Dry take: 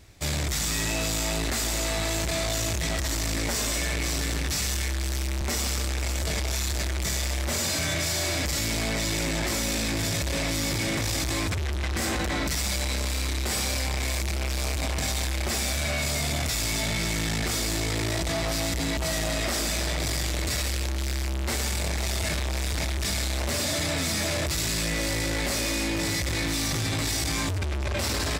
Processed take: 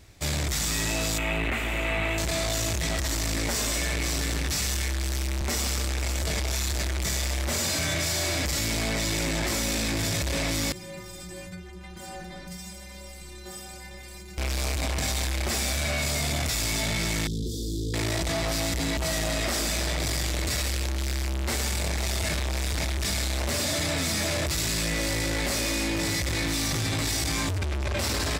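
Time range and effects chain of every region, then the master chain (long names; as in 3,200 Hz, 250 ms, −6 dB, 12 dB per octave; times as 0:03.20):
0:01.18–0:02.18: high shelf with overshoot 3,600 Hz −12 dB, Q 3 + notch filter 1,700 Hz, Q 23
0:10.72–0:14.38: low-shelf EQ 270 Hz +10.5 dB + stiff-string resonator 180 Hz, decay 0.46 s, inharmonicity 0.008
0:17.27–0:17.94: Chebyshev band-stop filter 480–3,400 Hz, order 5 + high-shelf EQ 2,300 Hz −11 dB
whole clip: no processing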